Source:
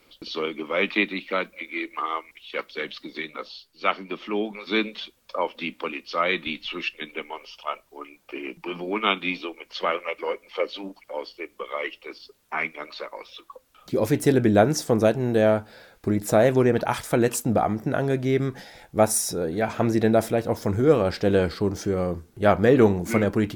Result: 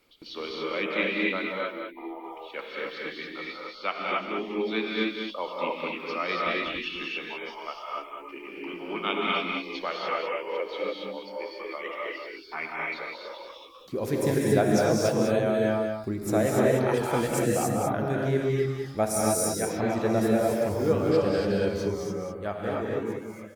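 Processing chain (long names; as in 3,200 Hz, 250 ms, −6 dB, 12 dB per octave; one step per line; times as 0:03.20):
fade-out on the ending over 2.37 s
reverb reduction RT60 1 s
gain on a spectral selection 0:01.42–0:02.24, 1,000–10,000 Hz −19 dB
single-tap delay 198 ms −6.5 dB
reverb whose tail is shaped and stops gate 310 ms rising, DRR −3.5 dB
level −7.5 dB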